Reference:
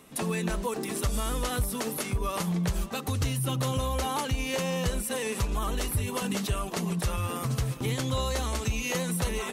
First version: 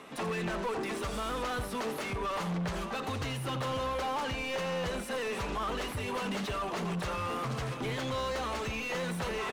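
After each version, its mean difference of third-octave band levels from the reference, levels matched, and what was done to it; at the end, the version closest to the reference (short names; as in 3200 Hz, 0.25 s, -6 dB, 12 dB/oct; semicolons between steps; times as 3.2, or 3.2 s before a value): 5.0 dB: high shelf 9000 Hz -11 dB; echo 86 ms -15.5 dB; overdrive pedal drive 26 dB, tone 2000 Hz, clips at -17 dBFS; gain -8.5 dB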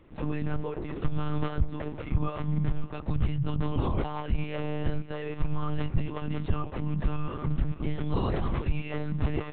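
14.5 dB: LPF 2600 Hz 12 dB/oct; low shelf 270 Hz +9.5 dB; monotone LPC vocoder at 8 kHz 150 Hz; gain -5 dB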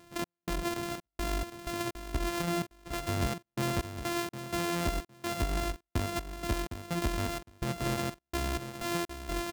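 10.0 dB: sample sorter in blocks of 128 samples; step gate "x.xx.x.x.x" 63 bpm -60 dB; feedback echo 0.759 s, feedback 16%, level -10 dB; gain -2.5 dB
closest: first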